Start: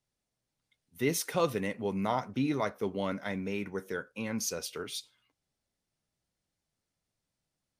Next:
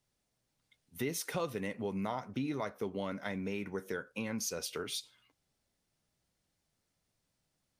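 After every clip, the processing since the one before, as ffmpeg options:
-af "acompressor=threshold=0.01:ratio=3,volume=1.58"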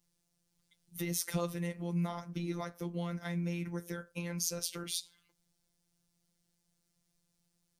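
-af "bass=f=250:g=9,treble=f=4000:g=8,afftfilt=real='hypot(re,im)*cos(PI*b)':imag='0':win_size=1024:overlap=0.75"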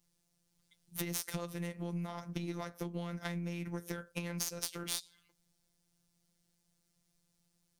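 -af "acompressor=threshold=0.0141:ratio=8,aeval=exprs='0.0841*(cos(1*acos(clip(val(0)/0.0841,-1,1)))-cos(1*PI/2))+0.0119*(cos(2*acos(clip(val(0)/0.0841,-1,1)))-cos(2*PI/2))+0.0119*(cos(3*acos(clip(val(0)/0.0841,-1,1)))-cos(3*PI/2))+0.00266*(cos(6*acos(clip(val(0)/0.0841,-1,1)))-cos(6*PI/2))+0.00188*(cos(8*acos(clip(val(0)/0.0841,-1,1)))-cos(8*PI/2))':c=same,volume=2"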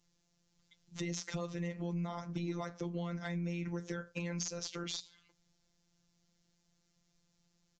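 -af "bandreject=f=60:t=h:w=6,bandreject=f=120:t=h:w=6,bandreject=f=180:t=h:w=6,aresample=16000,asoftclip=type=tanh:threshold=0.0335,aresample=44100,volume=1.41"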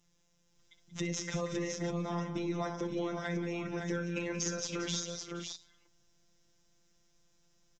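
-af "bandreject=f=4400:w=6.5,aecho=1:1:62|66|182|470|525|560:0.211|0.1|0.299|0.126|0.237|0.531,volume=1.5"

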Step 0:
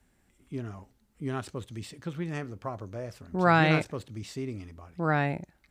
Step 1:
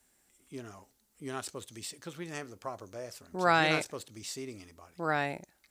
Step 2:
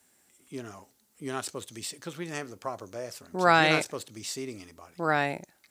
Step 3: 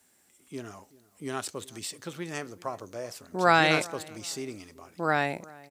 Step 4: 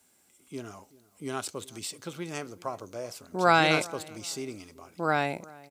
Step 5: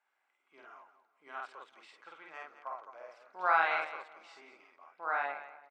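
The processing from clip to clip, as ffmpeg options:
-af "bass=f=250:g=-11,treble=f=4000:g=11,volume=0.75"
-af "highpass=96,volume=1.68"
-filter_complex "[0:a]asplit=2[s0][s1];[s1]adelay=381,lowpass=f=1300:p=1,volume=0.0891,asplit=2[s2][s3];[s3]adelay=381,lowpass=f=1300:p=1,volume=0.32[s4];[s0][s2][s4]amix=inputs=3:normalize=0"
-af "bandreject=f=1800:w=7.4"
-af "asuperpass=centerf=1300:order=4:qfactor=0.93,aecho=1:1:49.56|215.7:0.891|0.282,volume=0.501"

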